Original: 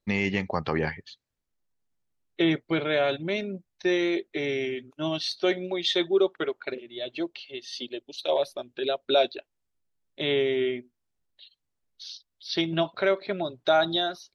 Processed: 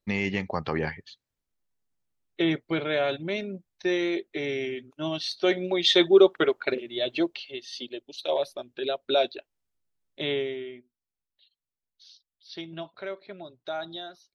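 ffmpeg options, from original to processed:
-af "volume=6dB,afade=t=in:st=5.28:d=0.78:silence=0.421697,afade=t=out:st=7.13:d=0.54:silence=0.421697,afade=t=out:st=10.24:d=0.4:silence=0.298538"

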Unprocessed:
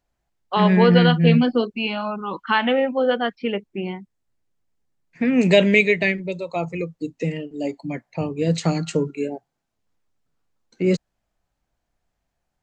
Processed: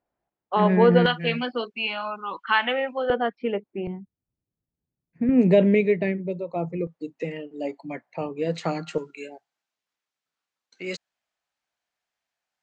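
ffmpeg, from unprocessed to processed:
-af "asetnsamples=n=441:p=0,asendcmd='1.06 bandpass f 1900;3.1 bandpass f 600;3.87 bandpass f 120;5.29 bandpass f 280;6.87 bandpass f 1000;8.98 bandpass f 3100',bandpass=f=540:t=q:w=0.56:csg=0"

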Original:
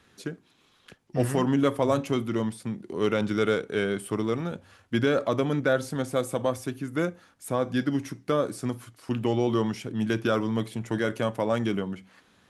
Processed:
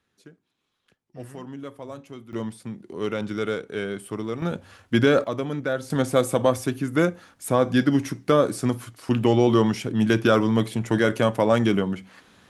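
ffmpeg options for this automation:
-af "asetnsamples=n=441:p=0,asendcmd='2.33 volume volume -2.5dB;4.42 volume volume 5.5dB;5.24 volume volume -2.5dB;5.9 volume volume 6.5dB',volume=-14dB"

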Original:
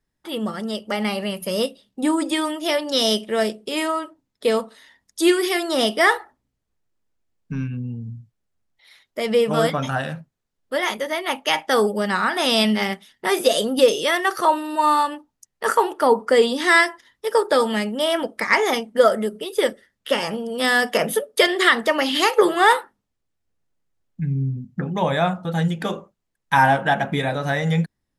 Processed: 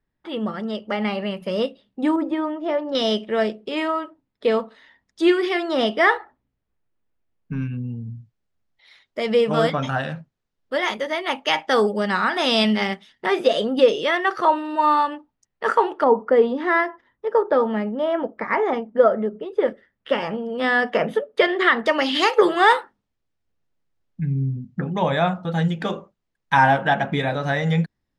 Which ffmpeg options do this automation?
-af "asetnsamples=n=441:p=0,asendcmd='2.16 lowpass f 1200;2.95 lowpass f 3000;7.62 lowpass f 5200;13.26 lowpass f 3100;16.04 lowpass f 1300;19.68 lowpass f 2300;21.86 lowpass f 5300',lowpass=2.9k"

